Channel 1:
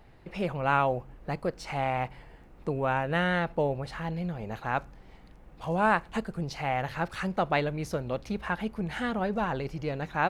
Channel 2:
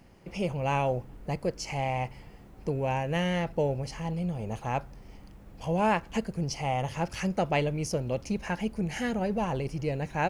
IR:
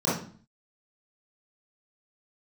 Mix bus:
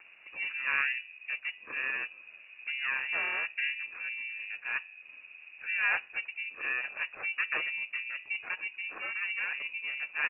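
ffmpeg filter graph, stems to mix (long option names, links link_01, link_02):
-filter_complex "[0:a]afwtdn=0.0141,equalizer=frequency=1700:width=1.6:gain=-4,flanger=delay=2.8:depth=5.2:regen=-52:speed=0.45:shape=sinusoidal,volume=1.5dB[link_01];[1:a]bandreject=frequency=133.6:width_type=h:width=4,bandreject=frequency=267.2:width_type=h:width=4,bandreject=frequency=400.8:width_type=h:width=4,bandreject=frequency=534.4:width_type=h:width=4,bandreject=frequency=668:width_type=h:width=4,bandreject=frequency=801.6:width_type=h:width=4,bandreject=frequency=935.2:width_type=h:width=4,bandreject=frequency=1068.8:width_type=h:width=4,bandreject=frequency=1202.4:width_type=h:width=4,bandreject=frequency=1336:width_type=h:width=4,bandreject=frequency=1469.6:width_type=h:width=4,bandreject=frequency=1603.2:width_type=h:width=4,bandreject=frequency=1736.8:width_type=h:width=4,bandreject=frequency=1870.4:width_type=h:width=4,bandreject=frequency=2004:width_type=h:width=4,bandreject=frequency=2137.6:width_type=h:width=4,bandreject=frequency=2271.2:width_type=h:width=4,bandreject=frequency=2404.8:width_type=h:width=4,bandreject=frequency=2538.4:width_type=h:width=4,bandreject=frequency=2672:width_type=h:width=4,bandreject=frequency=2805.6:width_type=h:width=4,bandreject=frequency=2939.2:width_type=h:width=4,bandreject=frequency=3072.8:width_type=h:width=4,bandreject=frequency=3206.4:width_type=h:width=4,bandreject=frequency=3340:width_type=h:width=4,bandreject=frequency=3473.6:width_type=h:width=4,bandreject=frequency=3607.2:width_type=h:width=4,bandreject=frequency=3740.8:width_type=h:width=4,bandreject=frequency=3874.4:width_type=h:width=4,bandreject=frequency=4008:width_type=h:width=4,bandreject=frequency=4141.6:width_type=h:width=4,bandreject=frequency=4275.2:width_type=h:width=4,bandreject=frequency=4408.8:width_type=h:width=4,bandreject=frequency=4542.4:width_type=h:width=4,bandreject=frequency=4676:width_type=h:width=4,bandreject=frequency=4809.6:width_type=h:width=4,bandreject=frequency=4943.2:width_type=h:width=4,bandreject=frequency=5076.8:width_type=h:width=4,acompressor=mode=upward:threshold=-32dB:ratio=2.5,adelay=1,volume=-8.5dB[link_02];[link_01][link_02]amix=inputs=2:normalize=0,aeval=exprs='val(0)*sin(2*PI*380*n/s)':channel_layout=same,lowpass=frequency=2500:width_type=q:width=0.5098,lowpass=frequency=2500:width_type=q:width=0.6013,lowpass=frequency=2500:width_type=q:width=0.9,lowpass=frequency=2500:width_type=q:width=2.563,afreqshift=-2900"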